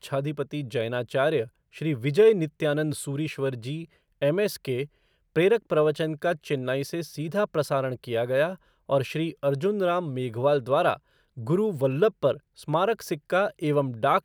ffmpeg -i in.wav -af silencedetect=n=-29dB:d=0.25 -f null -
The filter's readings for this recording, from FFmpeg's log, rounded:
silence_start: 1.44
silence_end: 1.81 | silence_duration: 0.38
silence_start: 3.82
silence_end: 4.22 | silence_duration: 0.40
silence_start: 4.84
silence_end: 5.36 | silence_duration: 0.52
silence_start: 8.53
silence_end: 8.90 | silence_duration: 0.37
silence_start: 10.94
silence_end: 11.47 | silence_duration: 0.53
silence_start: 12.34
silence_end: 12.68 | silence_duration: 0.35